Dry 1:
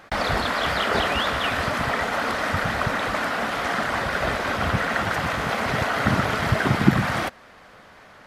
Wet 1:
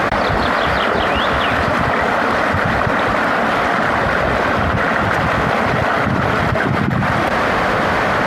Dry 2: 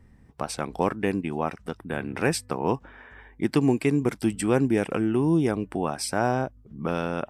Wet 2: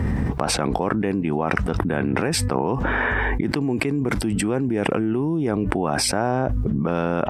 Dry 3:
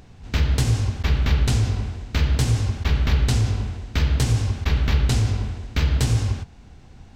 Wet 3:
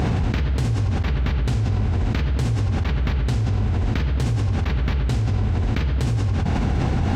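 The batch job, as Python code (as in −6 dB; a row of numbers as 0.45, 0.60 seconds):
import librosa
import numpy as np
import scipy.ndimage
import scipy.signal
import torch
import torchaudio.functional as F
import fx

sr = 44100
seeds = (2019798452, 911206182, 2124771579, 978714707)

y = scipy.signal.sosfilt(scipy.signal.butter(2, 51.0, 'highpass', fs=sr, output='sos'), x)
y = fx.high_shelf(y, sr, hz=3200.0, db=-12.0)
y = fx.env_flatten(y, sr, amount_pct=100)
y = y * 10.0 ** (-4.5 / 20.0)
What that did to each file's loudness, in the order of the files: +7.5, +3.5, 0.0 LU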